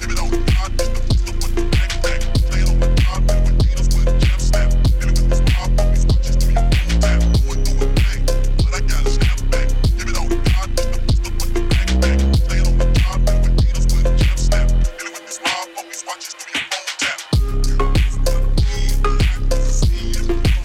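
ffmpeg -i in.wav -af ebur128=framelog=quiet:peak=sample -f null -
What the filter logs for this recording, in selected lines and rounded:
Integrated loudness:
  I:         -18.7 LUFS
  Threshold: -28.7 LUFS
Loudness range:
  LRA:         3.4 LU
  Threshold: -38.6 LUFS
  LRA low:   -20.7 LUFS
  LRA high:  -17.3 LUFS
Sample peak:
  Peak:       -6.2 dBFS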